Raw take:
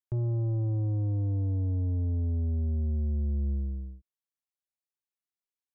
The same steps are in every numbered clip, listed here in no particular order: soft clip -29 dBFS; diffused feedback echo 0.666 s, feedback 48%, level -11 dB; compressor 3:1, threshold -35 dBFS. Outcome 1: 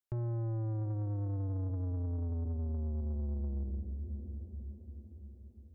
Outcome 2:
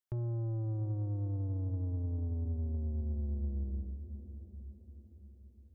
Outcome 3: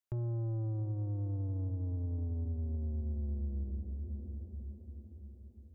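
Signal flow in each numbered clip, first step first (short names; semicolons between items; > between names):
diffused feedback echo > soft clip > compressor; compressor > diffused feedback echo > soft clip; diffused feedback echo > compressor > soft clip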